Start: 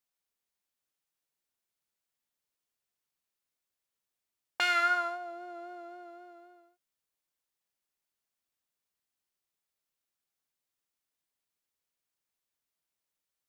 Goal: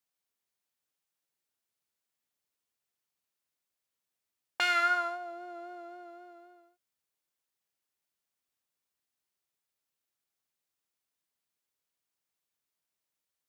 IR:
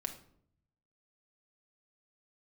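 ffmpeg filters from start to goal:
-af "highpass=53"

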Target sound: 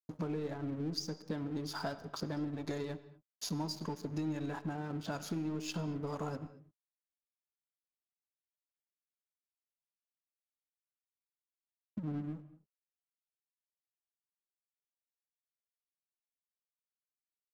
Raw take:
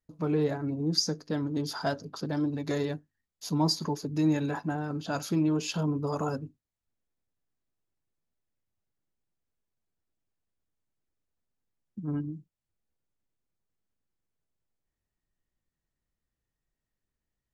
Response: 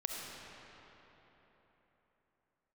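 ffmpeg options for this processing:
-filter_complex "[0:a]aeval=exprs='0.251*(cos(1*acos(clip(val(0)/0.251,-1,1)))-cos(1*PI/2))+0.00316*(cos(8*acos(clip(val(0)/0.251,-1,1)))-cos(8*PI/2))':c=same,acompressor=threshold=0.00708:ratio=5,aeval=exprs='sgn(val(0))*max(abs(val(0))-0.00119,0)':c=same,asplit=2[s0][s1];[1:a]atrim=start_sample=2205,afade=t=out:st=0.29:d=0.01,atrim=end_sample=13230,highshelf=f=5800:g=-9[s2];[s1][s2]afir=irnorm=-1:irlink=0,volume=0.376[s3];[s0][s3]amix=inputs=2:normalize=0,volume=1.68"

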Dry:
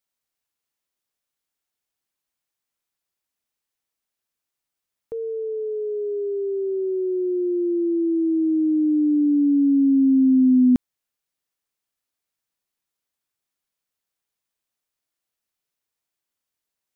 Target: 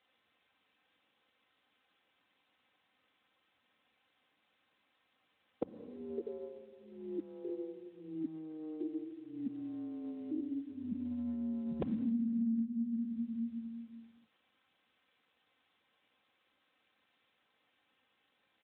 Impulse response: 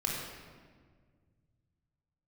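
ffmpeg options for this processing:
-filter_complex "[0:a]highpass=44,asplit=2[s0][s1];[1:a]atrim=start_sample=2205[s2];[s1][s2]afir=irnorm=-1:irlink=0,volume=0.126[s3];[s0][s3]amix=inputs=2:normalize=0,afftfilt=real='re*lt(hypot(re,im),0.224)':imag='im*lt(hypot(re,im),0.224)':win_size=1024:overlap=0.75,asoftclip=type=tanh:threshold=0.0708,adynamicequalizer=threshold=0.00112:dfrequency=240:dqfactor=3.2:tfrequency=240:tqfactor=3.2:attack=5:release=100:ratio=0.375:range=4:mode=boostabove:tftype=bell,aecho=1:1:3.5:0.58,asetrate=40131,aresample=44100,acompressor=threshold=0.00447:ratio=6,volume=4.73" -ar 8000 -c:a libspeex -b:a 18k

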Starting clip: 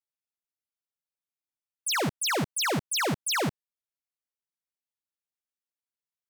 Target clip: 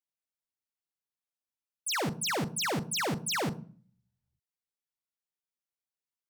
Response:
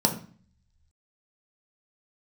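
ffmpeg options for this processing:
-filter_complex "[0:a]asplit=2[s0][s1];[1:a]atrim=start_sample=2205,adelay=41[s2];[s1][s2]afir=irnorm=-1:irlink=0,volume=0.0531[s3];[s0][s3]amix=inputs=2:normalize=0,volume=0.631"

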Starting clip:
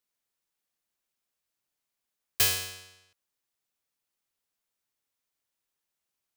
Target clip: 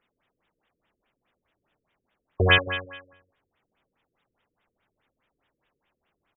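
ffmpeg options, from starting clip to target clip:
-filter_complex "[0:a]asplit=2[s0][s1];[s1]adelay=90,lowpass=f=1400:p=1,volume=0.447,asplit=2[s2][s3];[s3]adelay=90,lowpass=f=1400:p=1,volume=0.45,asplit=2[s4][s5];[s5]adelay=90,lowpass=f=1400:p=1,volume=0.45,asplit=2[s6][s7];[s7]adelay=90,lowpass=f=1400:p=1,volume=0.45,asplit=2[s8][s9];[s9]adelay=90,lowpass=f=1400:p=1,volume=0.45[s10];[s0][s2][s4][s6][s8][s10]amix=inputs=6:normalize=0,apsyclip=8.91,afftfilt=real='re*lt(b*sr/1024,500*pow(3800/500,0.5+0.5*sin(2*PI*4.8*pts/sr)))':imag='im*lt(b*sr/1024,500*pow(3800/500,0.5+0.5*sin(2*PI*4.8*pts/sr)))':win_size=1024:overlap=0.75"

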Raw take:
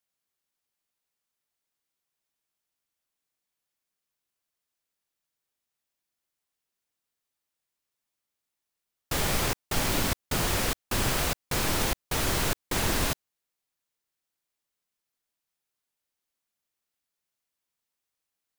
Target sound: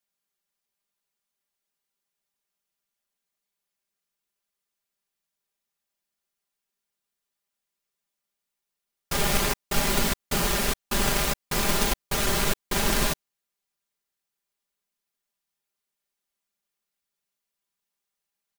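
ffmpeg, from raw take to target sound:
-filter_complex "[0:a]aecho=1:1:5:0.83,asplit=2[s0][s1];[s1]acrusher=bits=4:dc=4:mix=0:aa=0.000001,volume=0.398[s2];[s0][s2]amix=inputs=2:normalize=0,volume=0.794"

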